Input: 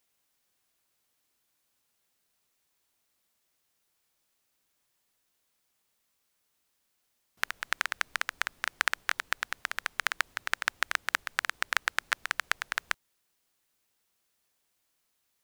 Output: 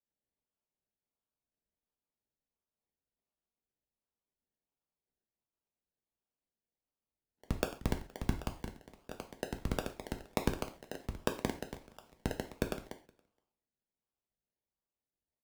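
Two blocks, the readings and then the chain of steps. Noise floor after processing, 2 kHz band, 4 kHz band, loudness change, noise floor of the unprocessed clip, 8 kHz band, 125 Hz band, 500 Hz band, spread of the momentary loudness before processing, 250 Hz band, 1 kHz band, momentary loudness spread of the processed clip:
under -85 dBFS, -19.0 dB, -13.0 dB, -8.0 dB, -77 dBFS, -10.0 dB, n/a, +9.5 dB, 5 LU, +19.0 dB, -9.5 dB, 13 LU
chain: steep high-pass 1300 Hz 36 dB/oct; notch 5300 Hz, Q 6.6; negative-ratio compressor -36 dBFS, ratio -0.5; decimation with a swept rate 30×, swing 60% 1.4 Hz; wavefolder -17.5 dBFS; echo 0.47 s -19 dB; non-linear reverb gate 0.16 s falling, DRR 5.5 dB; three-band expander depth 100%; gain -2 dB

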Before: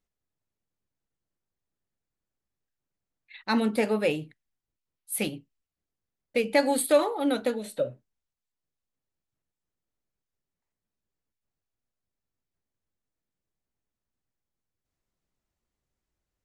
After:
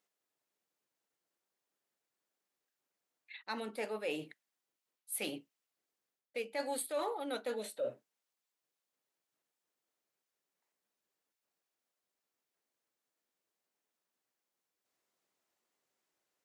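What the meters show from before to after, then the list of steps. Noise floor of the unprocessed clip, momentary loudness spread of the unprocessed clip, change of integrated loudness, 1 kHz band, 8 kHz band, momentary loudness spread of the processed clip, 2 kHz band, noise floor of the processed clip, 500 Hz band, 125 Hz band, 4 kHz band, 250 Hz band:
under -85 dBFS, 11 LU, -12.5 dB, -10.5 dB, -9.0 dB, 10 LU, -11.5 dB, under -85 dBFS, -12.5 dB, -18.0 dB, -9.5 dB, -17.0 dB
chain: reverse; compressor 20:1, threshold -36 dBFS, peak gain reduction 21.5 dB; reverse; HPF 390 Hz 12 dB/oct; gain +4 dB

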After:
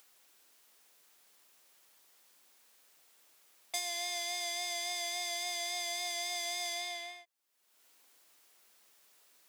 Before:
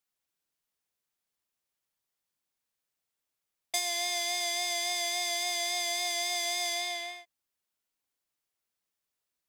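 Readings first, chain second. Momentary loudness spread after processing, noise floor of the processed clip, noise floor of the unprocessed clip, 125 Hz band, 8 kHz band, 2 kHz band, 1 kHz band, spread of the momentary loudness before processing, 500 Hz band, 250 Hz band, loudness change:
5 LU, -70 dBFS, under -85 dBFS, n/a, -5.5 dB, -5.5 dB, -5.5 dB, 5 LU, -5.5 dB, -7.0 dB, -5.5 dB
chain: HPF 290 Hz 12 dB/oct; upward compressor, threshold -38 dBFS; gain -5.5 dB

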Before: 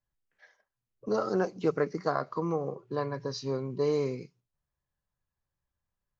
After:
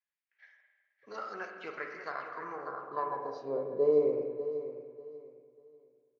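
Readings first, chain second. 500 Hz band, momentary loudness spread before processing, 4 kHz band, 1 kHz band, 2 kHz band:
-1.0 dB, 7 LU, under -10 dB, -2.0 dB, -0.5 dB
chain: feedback echo 0.592 s, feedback 27%, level -12 dB; spring tank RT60 1.5 s, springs 40/50 ms, chirp 80 ms, DRR 3.5 dB; band-pass sweep 2200 Hz -> 520 Hz, 2.24–3.68; gain +3.5 dB

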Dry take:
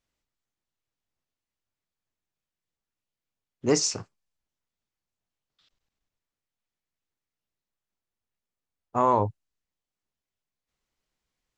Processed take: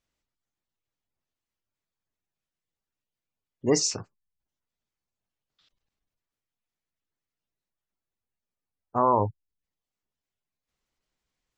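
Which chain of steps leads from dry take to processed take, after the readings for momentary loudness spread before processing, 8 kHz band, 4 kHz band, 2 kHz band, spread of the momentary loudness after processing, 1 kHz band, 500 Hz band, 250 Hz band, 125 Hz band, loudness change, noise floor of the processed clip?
10 LU, 0.0 dB, 0.0 dB, -2.0 dB, 10 LU, 0.0 dB, 0.0 dB, 0.0 dB, 0.0 dB, 0.0 dB, under -85 dBFS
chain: spectral gate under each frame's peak -30 dB strong

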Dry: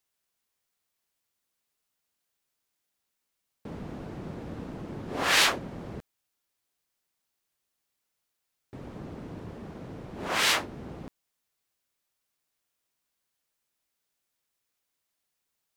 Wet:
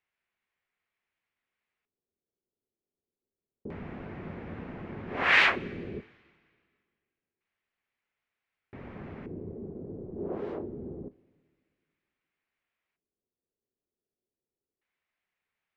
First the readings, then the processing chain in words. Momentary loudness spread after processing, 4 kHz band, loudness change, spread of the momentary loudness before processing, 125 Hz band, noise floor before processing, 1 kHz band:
22 LU, -7.5 dB, -3.0 dB, 21 LU, -1.5 dB, -82 dBFS, -2.0 dB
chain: high shelf 9800 Hz +5 dB; LFO low-pass square 0.27 Hz 400–2200 Hz; two-slope reverb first 0.24 s, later 2 s, from -18 dB, DRR 13 dB; gain -2.5 dB

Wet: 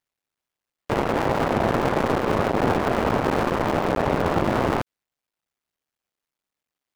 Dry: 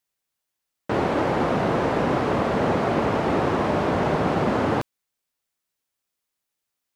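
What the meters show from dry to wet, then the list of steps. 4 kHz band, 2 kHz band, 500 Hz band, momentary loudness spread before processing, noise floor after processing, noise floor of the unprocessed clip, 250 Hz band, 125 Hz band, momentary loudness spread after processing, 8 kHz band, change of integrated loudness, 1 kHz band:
+1.0 dB, +1.0 dB, 0.0 dB, 3 LU, under -85 dBFS, -83 dBFS, -0.5 dB, 0.0 dB, 3 LU, +3.5 dB, 0.0 dB, +0.5 dB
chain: cycle switcher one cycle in 2, muted; high shelf 4500 Hz -10 dB; gain +3.5 dB

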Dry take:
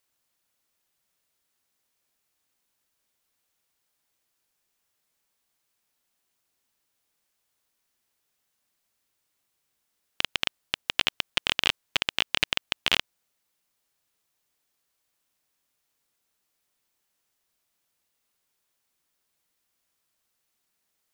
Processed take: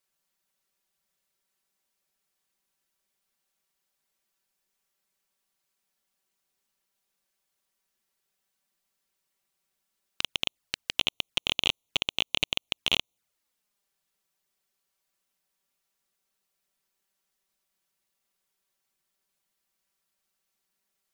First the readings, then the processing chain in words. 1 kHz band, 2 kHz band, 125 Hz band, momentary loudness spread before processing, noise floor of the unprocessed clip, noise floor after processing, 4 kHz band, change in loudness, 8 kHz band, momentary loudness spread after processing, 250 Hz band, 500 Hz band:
-5.5 dB, -4.0 dB, -0.5 dB, 5 LU, -78 dBFS, -81 dBFS, -1.0 dB, -1.5 dB, -1.5 dB, 6 LU, -0.5 dB, -1.5 dB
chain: envelope flanger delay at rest 5.3 ms, full sweep at -31 dBFS

